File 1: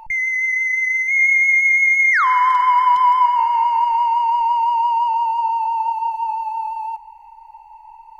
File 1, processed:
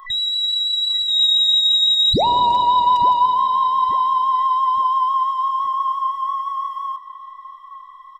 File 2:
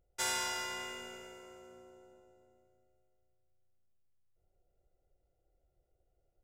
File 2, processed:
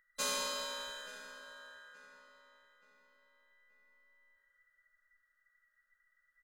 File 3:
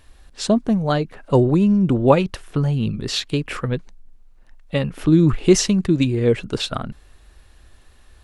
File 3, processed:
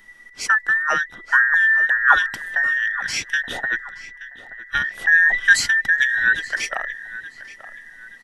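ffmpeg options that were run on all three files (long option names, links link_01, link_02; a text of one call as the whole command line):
ffmpeg -i in.wav -filter_complex "[0:a]afftfilt=real='real(if(between(b,1,1012),(2*floor((b-1)/92)+1)*92-b,b),0)':imag='imag(if(between(b,1,1012),(2*floor((b-1)/92)+1)*92-b,b),0)*if(between(b,1,1012),-1,1)':win_size=2048:overlap=0.75,asplit=2[link_01][link_02];[link_02]adelay=876,lowpass=frequency=3800:poles=1,volume=-16dB,asplit=2[link_03][link_04];[link_04]adelay=876,lowpass=frequency=3800:poles=1,volume=0.41,asplit=2[link_05][link_06];[link_06]adelay=876,lowpass=frequency=3800:poles=1,volume=0.41,asplit=2[link_07][link_08];[link_08]adelay=876,lowpass=frequency=3800:poles=1,volume=0.41[link_09];[link_01][link_03][link_05][link_07][link_09]amix=inputs=5:normalize=0,volume=-1dB" out.wav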